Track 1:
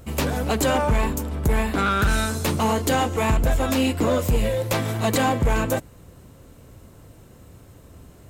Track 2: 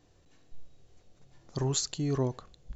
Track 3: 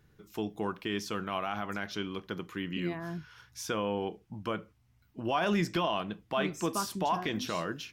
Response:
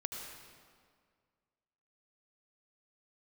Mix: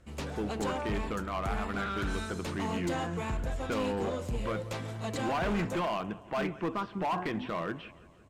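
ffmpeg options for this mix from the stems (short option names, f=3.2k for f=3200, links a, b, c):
-filter_complex "[0:a]lowpass=7.6k,bandreject=f=82.83:t=h:w=4,bandreject=f=165.66:t=h:w=4,bandreject=f=248.49:t=h:w=4,bandreject=f=331.32:t=h:w=4,bandreject=f=414.15:t=h:w=4,bandreject=f=496.98:t=h:w=4,bandreject=f=579.81:t=h:w=4,bandreject=f=662.64:t=h:w=4,bandreject=f=745.47:t=h:w=4,bandreject=f=828.3:t=h:w=4,bandreject=f=911.13:t=h:w=4,bandreject=f=993.96:t=h:w=4,bandreject=f=1.07679k:t=h:w=4,bandreject=f=1.15962k:t=h:w=4,bandreject=f=1.24245k:t=h:w=4,bandreject=f=1.32528k:t=h:w=4,bandreject=f=1.40811k:t=h:w=4,bandreject=f=1.49094k:t=h:w=4,bandreject=f=1.57377k:t=h:w=4,bandreject=f=1.6566k:t=h:w=4,bandreject=f=1.73943k:t=h:w=4,bandreject=f=1.82226k:t=h:w=4,bandreject=f=1.90509k:t=h:w=4,bandreject=f=1.98792k:t=h:w=4,bandreject=f=2.07075k:t=h:w=4,bandreject=f=2.15358k:t=h:w=4,bandreject=f=2.23641k:t=h:w=4,bandreject=f=2.31924k:t=h:w=4,bandreject=f=2.40207k:t=h:w=4,bandreject=f=2.4849k:t=h:w=4,bandreject=f=2.56773k:t=h:w=4,bandreject=f=2.65056k:t=h:w=4,bandreject=f=2.73339k:t=h:w=4,bandreject=f=2.81622k:t=h:w=4,bandreject=f=2.89905k:t=h:w=4,volume=-13.5dB,asplit=2[a][b];[b]volume=-21.5dB[c];[2:a]lowpass=f=2.6k:w=0.5412,lowpass=f=2.6k:w=1.3066,volume=1dB,asplit=2[d][e];[e]volume=-21dB[f];[c][f]amix=inputs=2:normalize=0,aecho=0:1:172|344|516|688|860|1032|1204|1376|1548:1|0.57|0.325|0.185|0.106|0.0602|0.0343|0.0195|0.0111[g];[a][d][g]amix=inputs=3:normalize=0,volume=27dB,asoftclip=hard,volume=-27dB"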